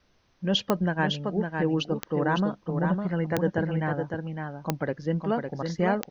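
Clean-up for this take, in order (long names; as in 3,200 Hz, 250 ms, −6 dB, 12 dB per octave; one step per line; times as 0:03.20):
click removal
downward expander −49 dBFS, range −21 dB
echo removal 557 ms −5.5 dB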